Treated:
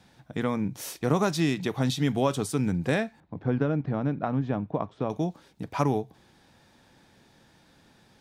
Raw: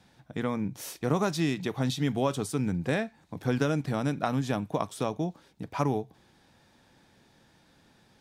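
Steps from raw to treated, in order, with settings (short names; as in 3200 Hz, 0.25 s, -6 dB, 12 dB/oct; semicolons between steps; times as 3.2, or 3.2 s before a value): 3.2–5.1 tape spacing loss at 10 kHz 42 dB; gain +2.5 dB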